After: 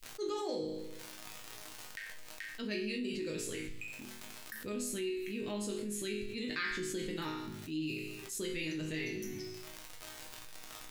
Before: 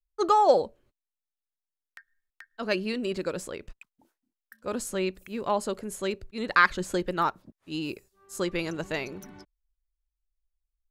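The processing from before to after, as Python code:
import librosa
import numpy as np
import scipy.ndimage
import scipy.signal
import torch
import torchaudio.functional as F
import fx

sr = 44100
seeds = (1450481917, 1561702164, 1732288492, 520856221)

y = fx.band_shelf(x, sr, hz=890.0, db=-16.0, octaves=1.7)
y = fx.hum_notches(y, sr, base_hz=50, count=2)
y = fx.dmg_crackle(y, sr, seeds[0], per_s=98.0, level_db=-48.0)
y = fx.resonator_bank(y, sr, root=44, chord='minor', decay_s=0.54)
y = fx.env_flatten(y, sr, amount_pct=70)
y = y * 10.0 ** (5.0 / 20.0)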